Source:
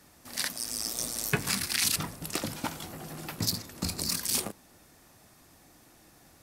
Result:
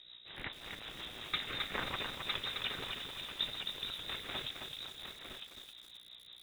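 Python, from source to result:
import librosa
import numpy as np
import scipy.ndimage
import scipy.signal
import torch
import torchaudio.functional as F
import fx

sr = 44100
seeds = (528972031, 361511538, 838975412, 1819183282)

y = fx.cvsd(x, sr, bps=64000)
y = fx.high_shelf(y, sr, hz=2200.0, db=4.0)
y = fx.notch(y, sr, hz=800.0, q=18.0)
y = fx.vibrato(y, sr, rate_hz=2.3, depth_cents=15.0)
y = fx.dmg_buzz(y, sr, base_hz=60.0, harmonics=9, level_db=-49.0, tilt_db=-4, odd_only=False)
y = y + 10.0 ** (-6.5 / 20.0) * np.pad(y, (int(958 * sr / 1000.0), 0))[:len(y)]
y = fx.freq_invert(y, sr, carrier_hz=3800)
y = fx.rotary(y, sr, hz=5.5)
y = fx.echo_crushed(y, sr, ms=265, feedback_pct=55, bits=8, wet_db=-4.0)
y = y * librosa.db_to_amplitude(-4.5)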